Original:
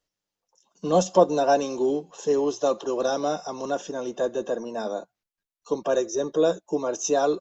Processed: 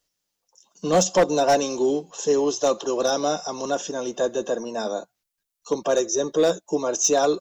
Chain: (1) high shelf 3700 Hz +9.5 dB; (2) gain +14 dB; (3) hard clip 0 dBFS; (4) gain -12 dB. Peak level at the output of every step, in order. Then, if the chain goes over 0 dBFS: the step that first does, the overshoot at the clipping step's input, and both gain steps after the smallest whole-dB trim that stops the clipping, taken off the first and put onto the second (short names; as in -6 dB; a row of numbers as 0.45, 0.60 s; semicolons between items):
-5.5, +8.5, 0.0, -12.0 dBFS; step 2, 8.5 dB; step 2 +5 dB, step 4 -3 dB